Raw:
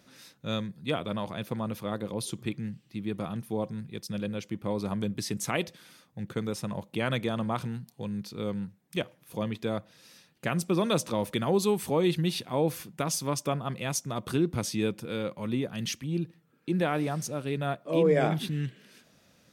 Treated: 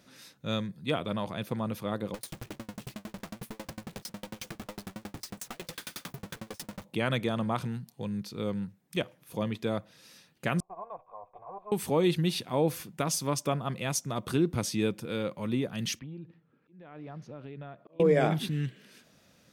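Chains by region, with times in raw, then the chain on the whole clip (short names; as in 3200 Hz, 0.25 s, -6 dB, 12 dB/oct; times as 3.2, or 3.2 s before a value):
2.14–6.85 infinite clipping + dB-ramp tremolo decaying 11 Hz, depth 36 dB
10.6–11.72 minimum comb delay 1.9 ms + vocal tract filter a
15.99–18 compressor 10:1, threshold -38 dBFS + auto swell 0.372 s + air absorption 290 m
whole clip: dry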